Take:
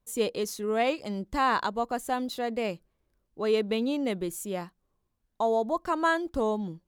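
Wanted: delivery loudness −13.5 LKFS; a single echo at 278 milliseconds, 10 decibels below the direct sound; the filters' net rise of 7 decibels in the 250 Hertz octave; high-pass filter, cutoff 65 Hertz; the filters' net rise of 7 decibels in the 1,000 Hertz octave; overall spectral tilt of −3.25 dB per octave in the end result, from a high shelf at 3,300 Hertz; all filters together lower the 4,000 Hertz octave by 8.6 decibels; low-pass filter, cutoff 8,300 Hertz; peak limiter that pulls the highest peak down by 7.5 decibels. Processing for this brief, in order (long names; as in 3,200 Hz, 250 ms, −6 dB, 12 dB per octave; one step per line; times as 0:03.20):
high-pass filter 65 Hz
low-pass filter 8,300 Hz
parametric band 250 Hz +8 dB
parametric band 1,000 Hz +9 dB
high-shelf EQ 3,300 Hz −5 dB
parametric band 4,000 Hz −9 dB
brickwall limiter −17 dBFS
single-tap delay 278 ms −10 dB
level +13 dB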